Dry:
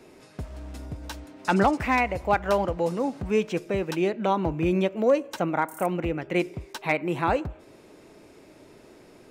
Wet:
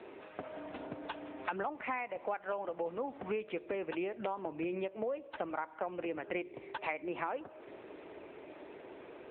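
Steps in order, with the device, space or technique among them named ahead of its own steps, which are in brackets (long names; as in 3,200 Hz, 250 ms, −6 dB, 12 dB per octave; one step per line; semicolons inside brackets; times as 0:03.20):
voicemail (band-pass filter 380–3,300 Hz; downward compressor 8 to 1, threshold −38 dBFS, peak gain reduction 20.5 dB; level +4.5 dB; AMR narrowband 7.95 kbit/s 8,000 Hz)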